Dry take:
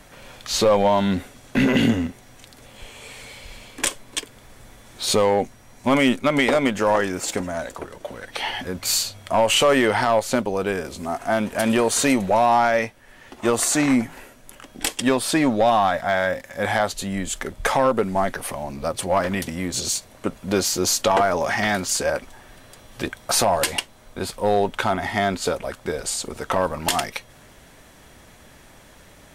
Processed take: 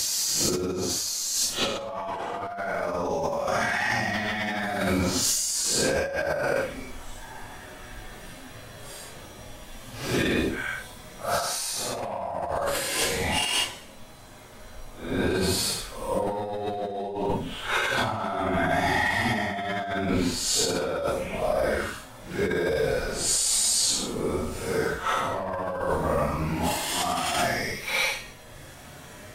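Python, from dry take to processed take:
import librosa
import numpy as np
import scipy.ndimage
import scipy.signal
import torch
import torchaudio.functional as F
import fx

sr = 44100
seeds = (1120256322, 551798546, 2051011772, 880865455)

y = fx.paulstretch(x, sr, seeds[0], factor=4.3, window_s=0.1, from_s=20.65)
y = fx.over_compress(y, sr, threshold_db=-27.0, ratio=-1.0)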